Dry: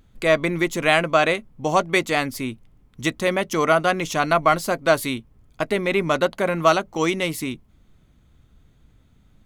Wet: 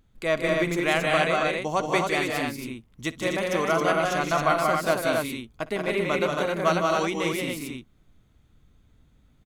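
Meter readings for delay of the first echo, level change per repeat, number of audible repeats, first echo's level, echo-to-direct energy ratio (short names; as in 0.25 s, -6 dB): 58 ms, no steady repeat, 4, -20.0 dB, 1.0 dB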